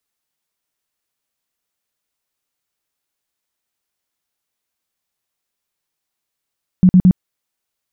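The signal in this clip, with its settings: tone bursts 183 Hz, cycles 11, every 0.11 s, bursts 3, -5 dBFS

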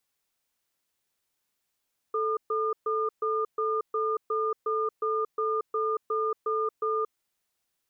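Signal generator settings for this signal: cadence 438 Hz, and 1210 Hz, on 0.23 s, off 0.13 s, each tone -27.5 dBFS 4.98 s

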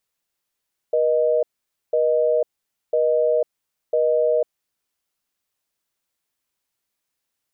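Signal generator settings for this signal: call progress tone busy tone, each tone -18.5 dBFS 3.52 s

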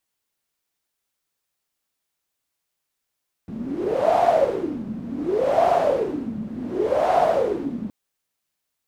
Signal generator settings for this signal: wind-like swept noise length 4.42 s, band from 210 Hz, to 710 Hz, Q 10, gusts 3, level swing 13 dB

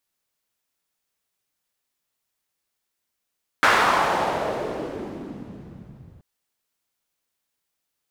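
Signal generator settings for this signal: swept filtered noise pink, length 2.58 s bandpass, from 1400 Hz, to 110 Hz, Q 1.7, exponential, gain ramp -32 dB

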